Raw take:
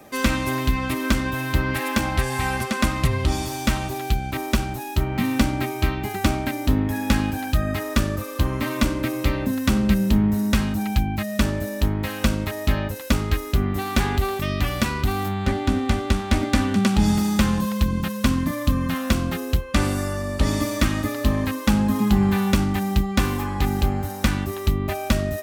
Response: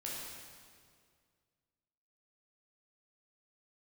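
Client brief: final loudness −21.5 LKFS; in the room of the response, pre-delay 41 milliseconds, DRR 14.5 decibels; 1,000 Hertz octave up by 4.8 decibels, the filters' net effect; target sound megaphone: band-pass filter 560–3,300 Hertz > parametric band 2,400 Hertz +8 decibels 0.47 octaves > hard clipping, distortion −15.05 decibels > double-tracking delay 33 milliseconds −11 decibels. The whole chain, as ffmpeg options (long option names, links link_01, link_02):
-filter_complex "[0:a]equalizer=frequency=1000:width_type=o:gain=6.5,asplit=2[link_01][link_02];[1:a]atrim=start_sample=2205,adelay=41[link_03];[link_02][link_03]afir=irnorm=-1:irlink=0,volume=-15dB[link_04];[link_01][link_04]amix=inputs=2:normalize=0,highpass=560,lowpass=3300,equalizer=frequency=2400:width_type=o:width=0.47:gain=8,asoftclip=type=hard:threshold=-18.5dB,asplit=2[link_05][link_06];[link_06]adelay=33,volume=-11dB[link_07];[link_05][link_07]amix=inputs=2:normalize=0,volume=4.5dB"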